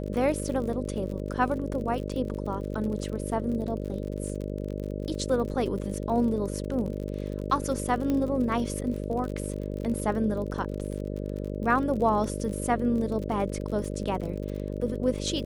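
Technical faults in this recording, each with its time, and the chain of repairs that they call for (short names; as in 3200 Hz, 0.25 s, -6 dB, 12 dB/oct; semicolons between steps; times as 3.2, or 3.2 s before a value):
buzz 50 Hz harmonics 12 -33 dBFS
crackle 43/s -34 dBFS
8.1 pop -17 dBFS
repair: de-click; de-hum 50 Hz, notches 12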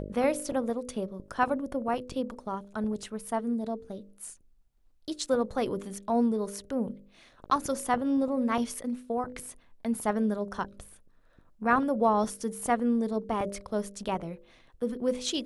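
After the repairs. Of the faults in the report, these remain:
none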